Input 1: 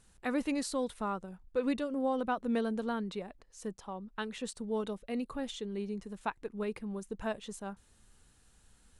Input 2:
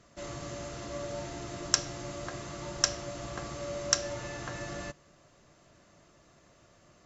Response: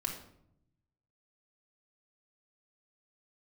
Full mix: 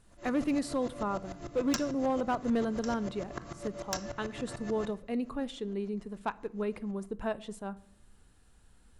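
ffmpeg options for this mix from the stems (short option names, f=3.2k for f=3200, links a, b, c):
-filter_complex "[0:a]equalizer=f=6.4k:w=7.5:g=-4.5,volume=1.5dB,asplit=2[a][b];[b]volume=-15dB[c];[1:a]aeval=exprs='val(0)*pow(10,-27*if(lt(mod(-6.8*n/s,1),2*abs(-6.8)/1000),1-mod(-6.8*n/s,1)/(2*abs(-6.8)/1000),(mod(-6.8*n/s,1)-2*abs(-6.8)/1000)/(1-2*abs(-6.8)/1000))/20)':c=same,volume=0dB,asplit=2[d][e];[e]volume=-5.5dB[f];[2:a]atrim=start_sample=2205[g];[c][f]amix=inputs=2:normalize=0[h];[h][g]afir=irnorm=-1:irlink=0[i];[a][d][i]amix=inputs=3:normalize=0,highshelf=f=2k:g=-6.5,asoftclip=type=hard:threshold=-23dB"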